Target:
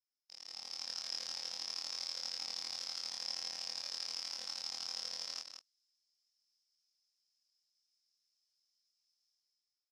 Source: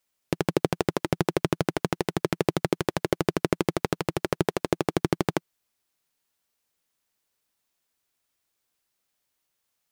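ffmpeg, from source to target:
-filter_complex "[0:a]afftfilt=real='re':imag='-im':win_size=2048:overlap=0.75,alimiter=limit=-19.5dB:level=0:latency=1:release=16,dynaudnorm=f=140:g=9:m=15dB,aeval=exprs='abs(val(0))':c=same,bandpass=f=5.2k:t=q:w=14:csg=0,asplit=2[a][b];[b]adelay=27,volume=-2dB[c];[a][c]amix=inputs=2:normalize=0,aecho=1:1:178:0.422,volume=3.5dB"

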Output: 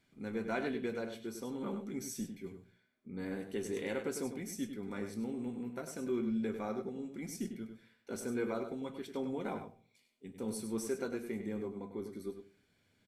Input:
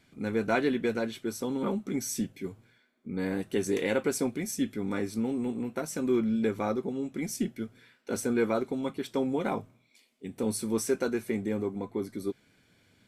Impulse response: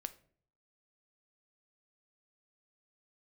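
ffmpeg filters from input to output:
-filter_complex "[0:a]asplit=2[a][b];[b]adelay=99.13,volume=-8dB,highshelf=f=4k:g=-2.23[c];[a][c]amix=inputs=2:normalize=0[d];[1:a]atrim=start_sample=2205,asetrate=52920,aresample=44100[e];[d][e]afir=irnorm=-1:irlink=0,volume=-5dB"

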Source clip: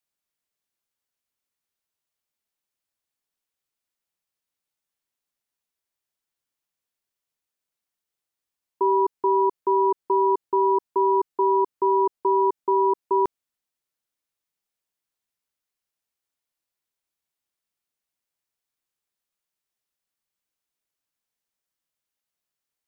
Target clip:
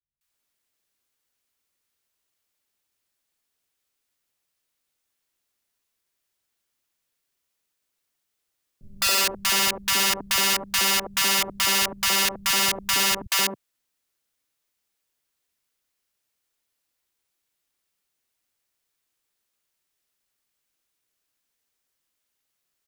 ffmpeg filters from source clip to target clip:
-filter_complex "[0:a]adynamicequalizer=threshold=0.0112:dfrequency=250:dqfactor=1.1:tfrequency=250:tqfactor=1.1:attack=5:release=100:ratio=0.375:range=2.5:mode=cutabove:tftype=bell,acrossover=split=120[a][b];[b]aeval=exprs='(mod(15*val(0)+1,2)-1)/15':c=same[c];[a][c]amix=inputs=2:normalize=0,acrossover=split=160|830[d][e][f];[f]adelay=210[g];[e]adelay=280[h];[d][h][g]amix=inputs=3:normalize=0,volume=8dB"

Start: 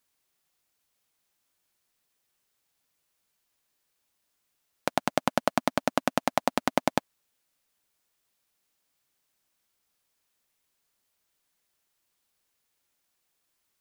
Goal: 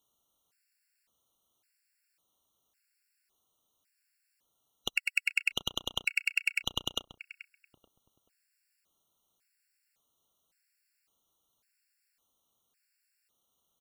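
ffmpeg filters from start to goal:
-filter_complex "[0:a]afftfilt=real='real(if(lt(b,920),b+92*(1-2*mod(floor(b/92),2)),b),0)':imag='imag(if(lt(b,920),b+92*(1-2*mod(floor(b/92),2)),b),0)':win_size=2048:overlap=0.75,asplit=2[a][b];[b]acompressor=threshold=-35dB:ratio=10,volume=0dB[c];[a][c]amix=inputs=2:normalize=0,asplit=2[d][e];[e]adelay=433,lowpass=f=1.2k:p=1,volume=-12dB,asplit=2[f][g];[g]adelay=433,lowpass=f=1.2k:p=1,volume=0.31,asplit=2[h][i];[i]adelay=433,lowpass=f=1.2k:p=1,volume=0.31[j];[d][f][h][j]amix=inputs=4:normalize=0,afftfilt=real='re*gt(sin(2*PI*0.9*pts/sr)*(1-2*mod(floor(b*sr/1024/1400),2)),0)':imag='im*gt(sin(2*PI*0.9*pts/sr)*(1-2*mod(floor(b*sr/1024/1400),2)),0)':win_size=1024:overlap=0.75,volume=-4dB"

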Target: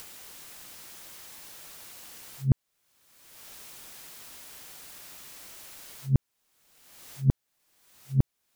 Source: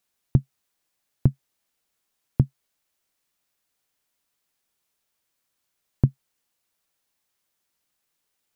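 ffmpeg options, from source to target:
-af "areverse,acompressor=mode=upward:threshold=-16dB:ratio=2.5,volume=-3.5dB"

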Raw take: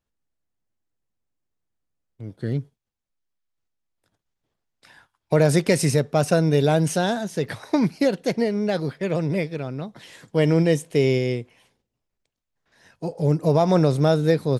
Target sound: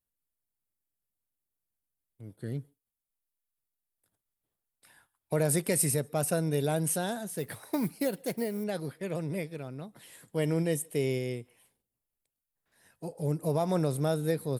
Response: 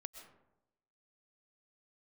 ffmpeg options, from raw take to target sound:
-filter_complex "[0:a]asettb=1/sr,asplit=3[a][b][c];[a]atrim=end=7.384[d];[b]atrim=start=7.38:end=8.64,asetpts=PTS-STARTPTS,afade=t=in:d=0.004:c=qsin,afade=t=out:st=1.256:d=0.004:c=qsin,acrusher=bits=8:mode=log:mix=0:aa=0.000001[e];[c]atrim=start=8.636[f];[d][e]acrossfade=d=0.004:c1=hsin:c2=qsin[g];[g][f]acrossfade=d=0.004:c1=qsin:c2=hsin,aexciter=amount=8.2:drive=3:freq=8.3k[h];[1:a]atrim=start_sample=2205,afade=t=out:st=0.14:d=0.01,atrim=end_sample=6615,asetrate=28665,aresample=44100[i];[h][i]afir=irnorm=-1:irlink=0,volume=-7dB"

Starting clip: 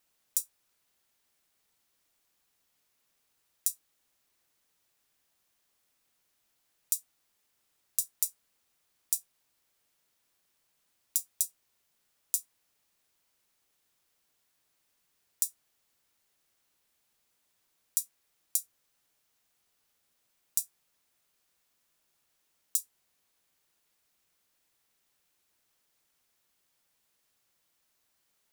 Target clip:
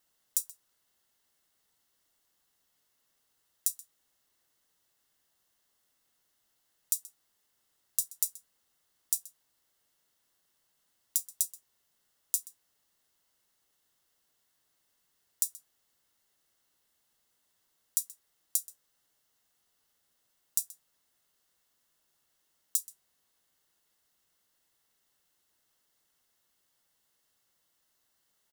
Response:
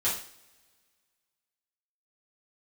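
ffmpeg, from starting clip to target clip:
-filter_complex "[0:a]asuperstop=centerf=2400:order=4:qfactor=7.3,asplit=2[a][b];[b]adelay=128.3,volume=-18dB,highshelf=f=4k:g=-2.89[c];[a][c]amix=inputs=2:normalize=0"

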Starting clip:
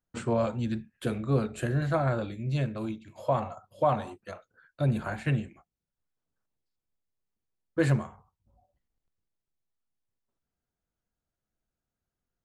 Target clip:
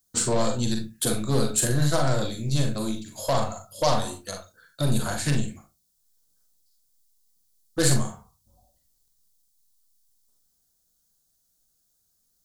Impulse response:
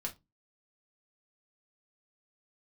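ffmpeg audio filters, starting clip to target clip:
-filter_complex "[0:a]aeval=exprs='0.224*(cos(1*acos(clip(val(0)/0.224,-1,1)))-cos(1*PI/2))+0.0178*(cos(5*acos(clip(val(0)/0.224,-1,1)))-cos(5*PI/2))+0.0158*(cos(8*acos(clip(val(0)/0.224,-1,1)))-cos(8*PI/2))':c=same,aexciter=amount=5.4:drive=8.2:freq=3.7k,asplit=2[a][b];[1:a]atrim=start_sample=2205,adelay=41[c];[b][c]afir=irnorm=-1:irlink=0,volume=-4dB[d];[a][d]amix=inputs=2:normalize=0"

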